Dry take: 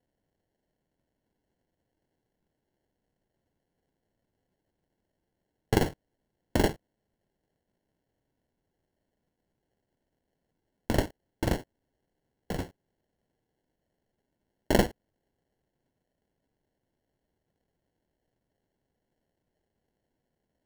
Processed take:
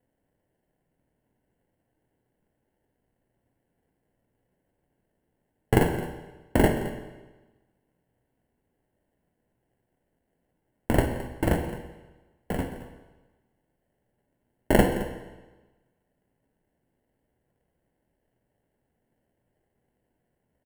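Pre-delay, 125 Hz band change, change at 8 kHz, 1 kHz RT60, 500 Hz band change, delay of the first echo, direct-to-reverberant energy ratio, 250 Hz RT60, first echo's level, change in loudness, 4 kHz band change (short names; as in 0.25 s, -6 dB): 16 ms, +5.5 dB, +1.0 dB, 1.1 s, +5.0 dB, 0.216 s, 5.0 dB, 1.1 s, -15.5 dB, +3.5 dB, -1.0 dB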